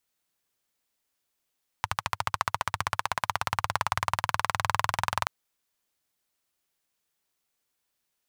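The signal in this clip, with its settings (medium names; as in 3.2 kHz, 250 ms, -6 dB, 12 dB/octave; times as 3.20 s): single-cylinder engine model, changing speed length 3.43 s, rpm 1600, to 2600, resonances 100/1000 Hz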